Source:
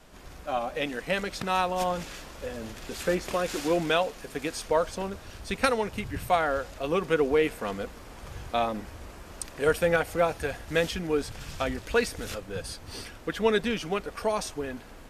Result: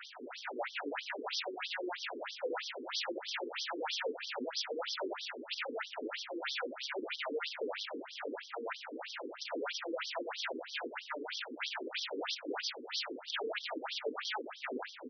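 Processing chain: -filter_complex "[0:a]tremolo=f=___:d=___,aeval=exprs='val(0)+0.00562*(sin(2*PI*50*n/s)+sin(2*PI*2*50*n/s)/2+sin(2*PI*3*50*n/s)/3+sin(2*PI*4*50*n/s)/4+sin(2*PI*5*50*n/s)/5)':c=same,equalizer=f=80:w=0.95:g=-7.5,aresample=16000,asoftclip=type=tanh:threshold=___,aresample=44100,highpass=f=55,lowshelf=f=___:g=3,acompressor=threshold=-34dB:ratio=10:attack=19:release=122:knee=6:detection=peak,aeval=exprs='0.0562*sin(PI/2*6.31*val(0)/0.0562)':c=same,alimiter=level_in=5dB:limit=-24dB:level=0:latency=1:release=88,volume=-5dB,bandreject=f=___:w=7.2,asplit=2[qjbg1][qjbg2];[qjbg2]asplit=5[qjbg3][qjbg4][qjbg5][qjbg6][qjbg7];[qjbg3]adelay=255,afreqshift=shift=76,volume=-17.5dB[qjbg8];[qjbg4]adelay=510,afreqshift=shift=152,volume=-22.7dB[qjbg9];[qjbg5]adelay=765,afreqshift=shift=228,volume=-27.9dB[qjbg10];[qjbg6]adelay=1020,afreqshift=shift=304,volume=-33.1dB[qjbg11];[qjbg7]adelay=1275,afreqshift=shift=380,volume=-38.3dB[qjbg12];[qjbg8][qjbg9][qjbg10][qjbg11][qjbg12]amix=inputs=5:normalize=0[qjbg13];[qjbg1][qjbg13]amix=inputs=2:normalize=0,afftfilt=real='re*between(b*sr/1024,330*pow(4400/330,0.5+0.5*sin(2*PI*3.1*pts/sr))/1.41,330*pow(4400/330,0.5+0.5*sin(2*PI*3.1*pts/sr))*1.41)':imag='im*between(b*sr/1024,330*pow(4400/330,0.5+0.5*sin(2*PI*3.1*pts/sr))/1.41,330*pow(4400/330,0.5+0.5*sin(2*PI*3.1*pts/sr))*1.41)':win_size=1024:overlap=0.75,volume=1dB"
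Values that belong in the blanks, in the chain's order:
2.3, 0.69, -26dB, 390, 1100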